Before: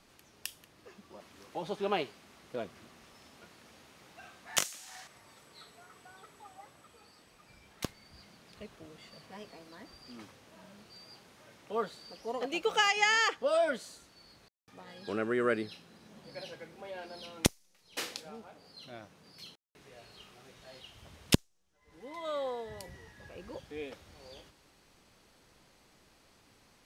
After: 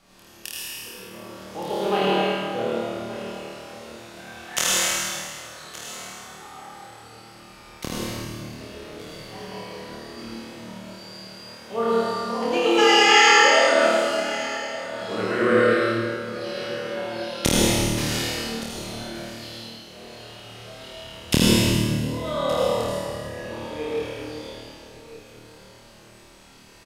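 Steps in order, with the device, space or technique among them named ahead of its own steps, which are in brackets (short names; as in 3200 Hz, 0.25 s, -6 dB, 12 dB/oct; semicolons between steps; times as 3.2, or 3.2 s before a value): tunnel (flutter echo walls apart 4.5 m, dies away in 0.93 s; reverb RT60 2.3 s, pre-delay 72 ms, DRR -5.5 dB); 13.14–14.11 HPF 130 Hz; echo 1.17 s -16 dB; gain +2.5 dB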